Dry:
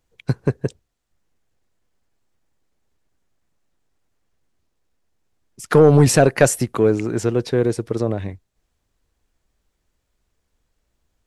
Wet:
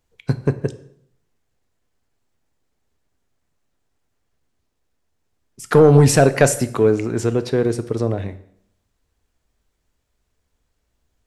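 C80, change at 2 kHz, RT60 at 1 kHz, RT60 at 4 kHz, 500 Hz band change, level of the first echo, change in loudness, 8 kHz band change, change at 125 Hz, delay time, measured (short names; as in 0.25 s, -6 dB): 18.0 dB, +0.5 dB, 0.65 s, 0.60 s, +0.5 dB, none, +0.5 dB, +0.5 dB, +1.5 dB, none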